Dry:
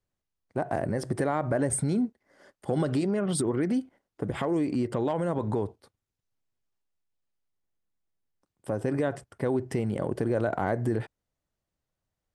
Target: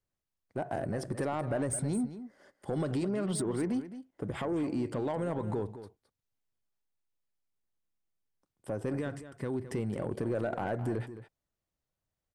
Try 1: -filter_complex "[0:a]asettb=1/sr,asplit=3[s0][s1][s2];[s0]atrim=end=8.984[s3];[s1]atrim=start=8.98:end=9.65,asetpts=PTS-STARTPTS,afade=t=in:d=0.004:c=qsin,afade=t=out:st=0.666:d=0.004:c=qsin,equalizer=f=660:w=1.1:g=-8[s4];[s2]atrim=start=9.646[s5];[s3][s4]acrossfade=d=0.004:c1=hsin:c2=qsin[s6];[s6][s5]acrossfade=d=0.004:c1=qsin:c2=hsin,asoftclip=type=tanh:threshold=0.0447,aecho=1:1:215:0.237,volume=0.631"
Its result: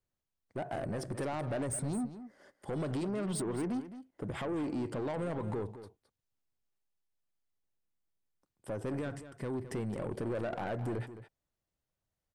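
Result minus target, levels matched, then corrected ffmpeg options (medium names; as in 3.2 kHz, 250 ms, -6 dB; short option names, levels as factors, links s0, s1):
saturation: distortion +8 dB
-filter_complex "[0:a]asettb=1/sr,asplit=3[s0][s1][s2];[s0]atrim=end=8.984[s3];[s1]atrim=start=8.98:end=9.65,asetpts=PTS-STARTPTS,afade=t=in:d=0.004:c=qsin,afade=t=out:st=0.666:d=0.004:c=qsin,equalizer=f=660:w=1.1:g=-8[s4];[s2]atrim=start=9.646[s5];[s3][s4]acrossfade=d=0.004:c1=hsin:c2=qsin[s6];[s6][s5]acrossfade=d=0.004:c1=qsin:c2=hsin,asoftclip=type=tanh:threshold=0.106,aecho=1:1:215:0.237,volume=0.631"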